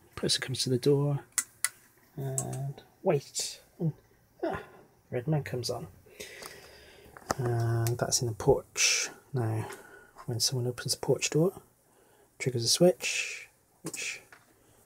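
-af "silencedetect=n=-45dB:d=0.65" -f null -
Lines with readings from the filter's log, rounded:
silence_start: 11.59
silence_end: 12.40 | silence_duration: 0.82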